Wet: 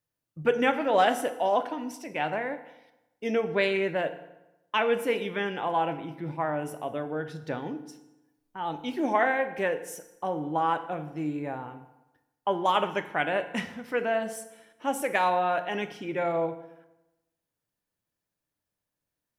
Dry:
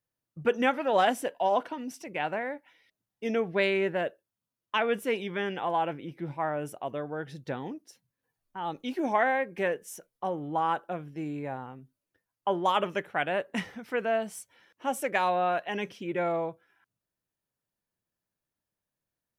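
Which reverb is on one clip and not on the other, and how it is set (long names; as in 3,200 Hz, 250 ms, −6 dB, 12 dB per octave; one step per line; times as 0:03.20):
feedback delay network reverb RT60 0.97 s, low-frequency decay 1.05×, high-frequency decay 0.75×, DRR 8 dB
level +1 dB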